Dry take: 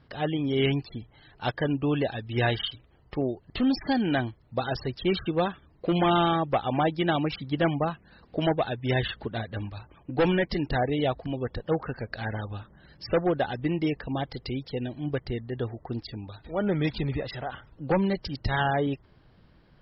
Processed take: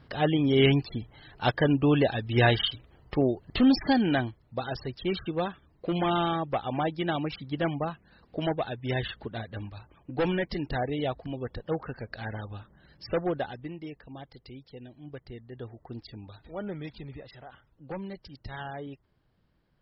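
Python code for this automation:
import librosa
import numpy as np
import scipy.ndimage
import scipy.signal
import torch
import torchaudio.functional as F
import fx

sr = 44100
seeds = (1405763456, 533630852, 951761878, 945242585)

y = fx.gain(x, sr, db=fx.line((3.78, 3.5), (4.56, -4.0), (13.37, -4.0), (13.77, -13.5), (15.04, -13.5), (16.38, -4.5), (16.87, -13.0)))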